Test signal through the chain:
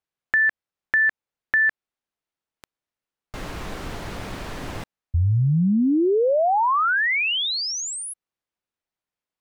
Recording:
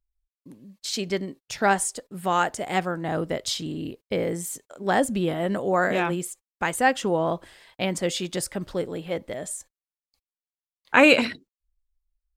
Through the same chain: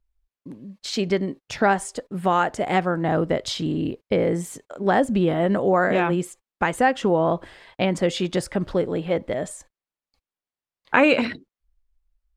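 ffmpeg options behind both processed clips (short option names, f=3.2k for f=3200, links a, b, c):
-af "acompressor=threshold=-25dB:ratio=2,aemphasis=mode=reproduction:type=75kf,volume=7.5dB"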